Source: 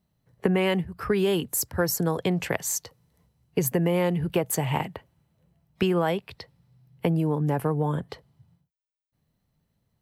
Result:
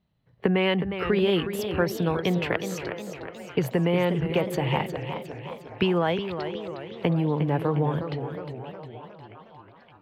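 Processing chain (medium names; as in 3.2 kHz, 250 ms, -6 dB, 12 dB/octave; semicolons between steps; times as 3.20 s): resonant high shelf 5.2 kHz -14 dB, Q 1.5; repeats whose band climbs or falls 567 ms, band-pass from 420 Hz, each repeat 0.7 oct, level -10 dB; modulated delay 361 ms, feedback 54%, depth 131 cents, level -9 dB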